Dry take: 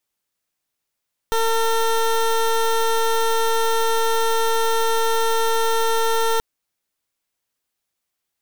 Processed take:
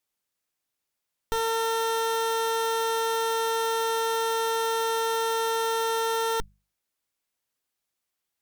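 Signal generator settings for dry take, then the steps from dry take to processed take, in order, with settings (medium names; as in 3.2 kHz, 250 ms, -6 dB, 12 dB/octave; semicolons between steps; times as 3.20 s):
pulse 453 Hz, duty 19% -18.5 dBFS 5.08 s
valve stage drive 23 dB, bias 0.65; hum notches 50/100/150/200 Hz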